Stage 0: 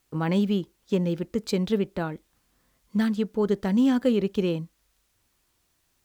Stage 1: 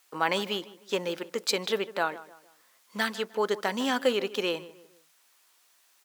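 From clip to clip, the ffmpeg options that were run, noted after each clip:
ffmpeg -i in.wav -filter_complex "[0:a]highpass=740,asplit=2[link_01][link_02];[link_02]adelay=153,lowpass=frequency=2100:poles=1,volume=-16.5dB,asplit=2[link_03][link_04];[link_04]adelay=153,lowpass=frequency=2100:poles=1,volume=0.4,asplit=2[link_05][link_06];[link_06]adelay=153,lowpass=frequency=2100:poles=1,volume=0.4[link_07];[link_01][link_03][link_05][link_07]amix=inputs=4:normalize=0,volume=7.5dB" out.wav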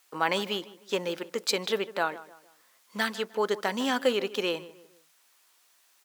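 ffmpeg -i in.wav -af anull out.wav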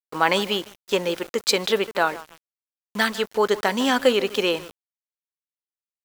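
ffmpeg -i in.wav -af "aeval=exprs='val(0)*gte(abs(val(0)),0.00668)':channel_layout=same,volume=7dB" out.wav

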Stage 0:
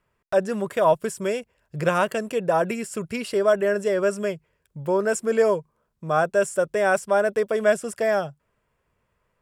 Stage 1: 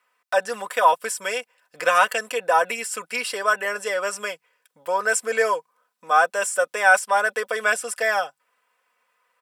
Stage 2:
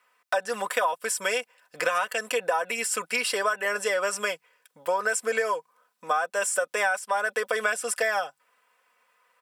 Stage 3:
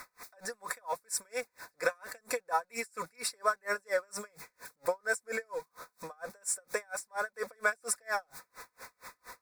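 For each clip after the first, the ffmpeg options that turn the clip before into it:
ffmpeg -i in.wav -af "highpass=880,bandreject=frequency=6800:width=22,aecho=1:1:4:0.7,volume=6dB" out.wav
ffmpeg -i in.wav -af "acompressor=threshold=-24dB:ratio=16,volume=2.5dB" out.wav
ffmpeg -i in.wav -af "aeval=exprs='val(0)+0.5*0.0141*sgn(val(0))':channel_layout=same,asuperstop=centerf=3000:order=4:qfactor=2.1,aeval=exprs='val(0)*pow(10,-38*(0.5-0.5*cos(2*PI*4.3*n/s))/20)':channel_layout=same,volume=-2dB" out.wav

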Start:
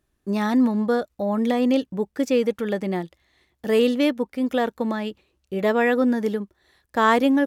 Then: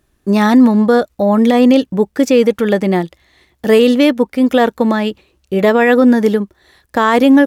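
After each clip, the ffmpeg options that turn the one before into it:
ffmpeg -i in.wav -af "alimiter=level_in=12.5dB:limit=-1dB:release=50:level=0:latency=1,volume=-1dB" out.wav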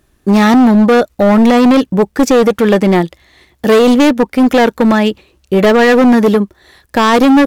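ffmpeg -i in.wav -af "asoftclip=type=hard:threshold=-10.5dB,volume=5.5dB" out.wav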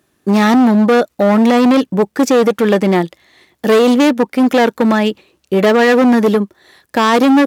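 ffmpeg -i in.wav -af "highpass=150,volume=-2dB" out.wav

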